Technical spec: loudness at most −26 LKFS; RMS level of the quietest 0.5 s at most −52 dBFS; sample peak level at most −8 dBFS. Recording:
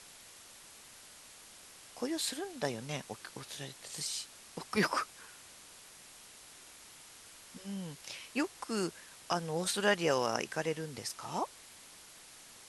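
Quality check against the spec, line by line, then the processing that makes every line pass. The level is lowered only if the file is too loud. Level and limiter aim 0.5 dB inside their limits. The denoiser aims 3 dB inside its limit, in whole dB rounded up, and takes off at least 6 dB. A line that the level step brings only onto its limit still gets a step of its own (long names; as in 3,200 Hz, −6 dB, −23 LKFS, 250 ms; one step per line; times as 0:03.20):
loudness −36.0 LKFS: in spec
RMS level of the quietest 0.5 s −55 dBFS: in spec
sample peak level −15.0 dBFS: in spec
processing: no processing needed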